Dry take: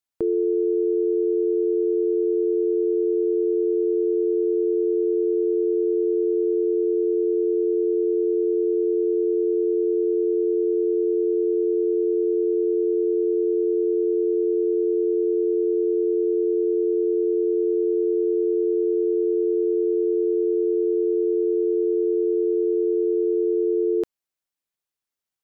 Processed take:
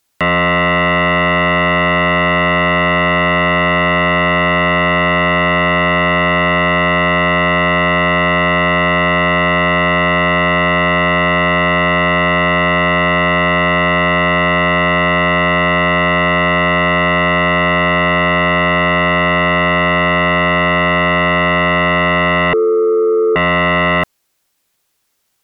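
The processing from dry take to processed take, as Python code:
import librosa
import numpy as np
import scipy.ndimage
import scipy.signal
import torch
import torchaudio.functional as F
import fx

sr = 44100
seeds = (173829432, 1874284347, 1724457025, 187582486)

y = fx.highpass(x, sr, hz=550.0, slope=24, at=(22.53, 23.36))
y = fx.fold_sine(y, sr, drive_db=13, ceiling_db=-15.0)
y = y * 10.0 ** (5.5 / 20.0)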